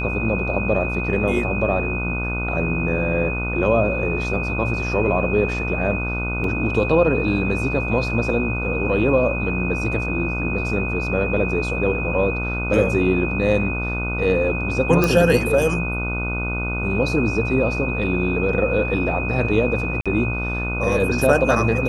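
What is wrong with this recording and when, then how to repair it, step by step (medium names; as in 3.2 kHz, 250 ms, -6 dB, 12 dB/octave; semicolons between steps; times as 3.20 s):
buzz 60 Hz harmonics 25 -26 dBFS
whine 2.5 kHz -26 dBFS
6.44 s: dropout 2.3 ms
15.04 s: pop
20.01–20.06 s: dropout 46 ms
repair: de-click; de-hum 60 Hz, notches 25; band-stop 2.5 kHz, Q 30; interpolate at 6.44 s, 2.3 ms; interpolate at 20.01 s, 46 ms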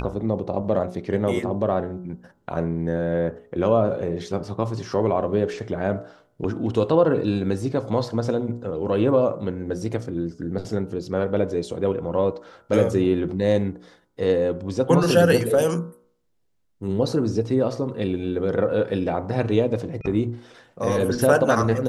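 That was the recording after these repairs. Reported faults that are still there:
nothing left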